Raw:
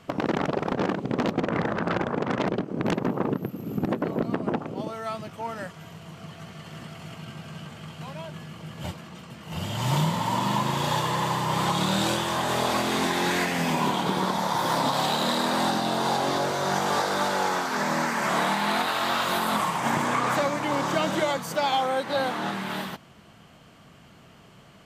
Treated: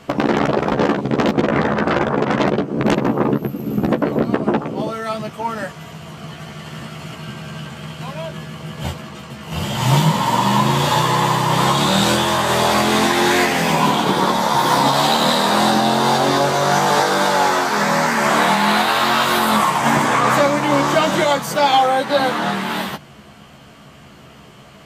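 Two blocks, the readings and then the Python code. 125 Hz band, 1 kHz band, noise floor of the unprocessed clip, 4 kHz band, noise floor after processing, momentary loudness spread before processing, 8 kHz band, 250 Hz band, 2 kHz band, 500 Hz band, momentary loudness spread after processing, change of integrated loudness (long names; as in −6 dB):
+9.0 dB, +9.5 dB, −52 dBFS, +9.5 dB, −43 dBFS, 16 LU, +9.5 dB, +9.0 dB, +9.5 dB, +9.5 dB, 16 LU, +9.5 dB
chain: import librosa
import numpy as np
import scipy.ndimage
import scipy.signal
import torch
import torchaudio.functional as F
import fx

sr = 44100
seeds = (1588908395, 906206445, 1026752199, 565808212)

y = fx.hum_notches(x, sr, base_hz=50, count=3)
y = fx.doubler(y, sr, ms=14.0, db=-4)
y = y * librosa.db_to_amplitude(8.0)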